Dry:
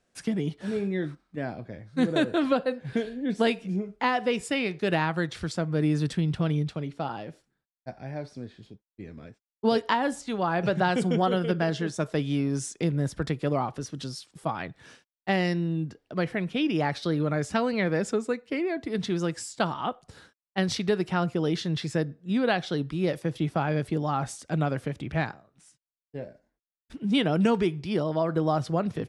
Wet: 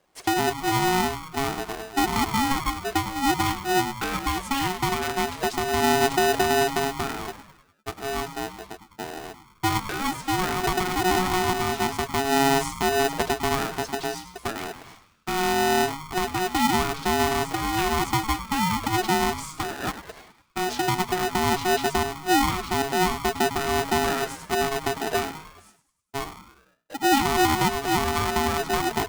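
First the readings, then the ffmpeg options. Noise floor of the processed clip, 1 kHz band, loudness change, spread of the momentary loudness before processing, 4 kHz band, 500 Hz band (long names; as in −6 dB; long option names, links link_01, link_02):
−60 dBFS, +8.5 dB, +3.5 dB, 13 LU, +8.0 dB, +2.0 dB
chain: -filter_complex "[0:a]alimiter=limit=-19.5dB:level=0:latency=1:release=317,lowshelf=frequency=450:gain=9,asplit=6[link_01][link_02][link_03][link_04][link_05][link_06];[link_02]adelay=101,afreqshift=120,volume=-12dB[link_07];[link_03]adelay=202,afreqshift=240,volume=-17.8dB[link_08];[link_04]adelay=303,afreqshift=360,volume=-23.7dB[link_09];[link_05]adelay=404,afreqshift=480,volume=-29.5dB[link_10];[link_06]adelay=505,afreqshift=600,volume=-35.4dB[link_11];[link_01][link_07][link_08][link_09][link_10][link_11]amix=inputs=6:normalize=0,aeval=exprs='val(0)*sgn(sin(2*PI*550*n/s))':channel_layout=same"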